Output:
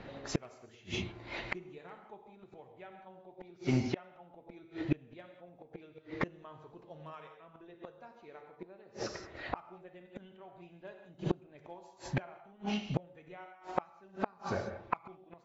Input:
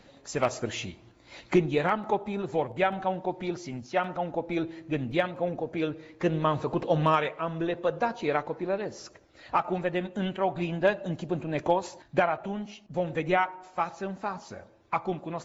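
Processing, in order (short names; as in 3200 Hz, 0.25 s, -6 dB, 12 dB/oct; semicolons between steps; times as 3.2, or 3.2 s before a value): low-pass opened by the level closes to 2600 Hz, open at -21 dBFS; non-linear reverb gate 0.21 s flat, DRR 4 dB; flipped gate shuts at -24 dBFS, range -33 dB; gain +7 dB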